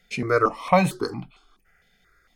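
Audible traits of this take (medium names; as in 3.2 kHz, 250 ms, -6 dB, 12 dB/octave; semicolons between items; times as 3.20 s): notches that jump at a steady rate 4.4 Hz 310–1700 Hz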